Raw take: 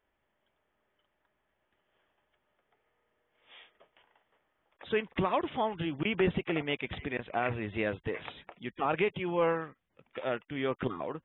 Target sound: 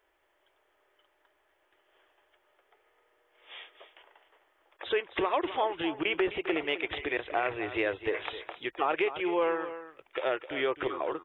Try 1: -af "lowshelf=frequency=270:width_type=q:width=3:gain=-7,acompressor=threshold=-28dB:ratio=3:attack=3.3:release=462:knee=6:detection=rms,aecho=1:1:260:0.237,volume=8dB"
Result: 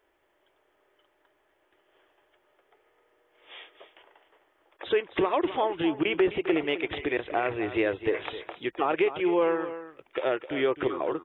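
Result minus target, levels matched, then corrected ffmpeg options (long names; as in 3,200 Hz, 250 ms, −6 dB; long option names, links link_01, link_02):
250 Hz band +3.0 dB
-af "lowshelf=frequency=270:width_type=q:width=3:gain=-7,acompressor=threshold=-28dB:ratio=3:attack=3.3:release=462:knee=6:detection=rms,equalizer=frequency=190:width=0.58:gain=-9.5,aecho=1:1:260:0.237,volume=8dB"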